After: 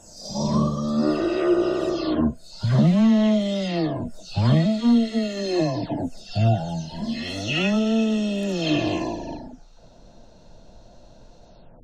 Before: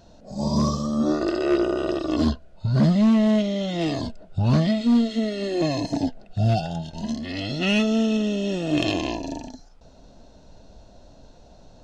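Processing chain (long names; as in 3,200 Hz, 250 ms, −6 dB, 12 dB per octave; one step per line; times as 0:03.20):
every frequency bin delayed by itself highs early, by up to 395 ms
level +1.5 dB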